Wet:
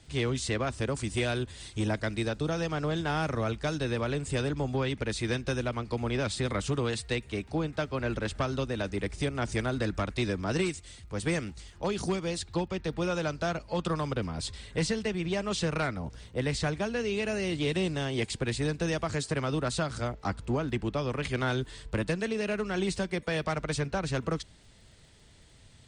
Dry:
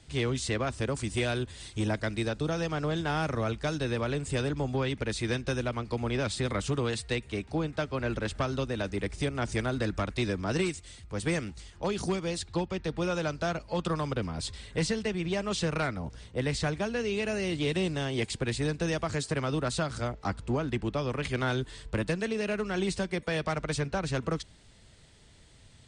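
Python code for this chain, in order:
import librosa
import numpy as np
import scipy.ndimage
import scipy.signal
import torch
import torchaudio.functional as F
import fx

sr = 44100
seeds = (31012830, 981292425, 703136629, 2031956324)

y = fx.dmg_crackle(x, sr, seeds[0], per_s=31.0, level_db=-56.0)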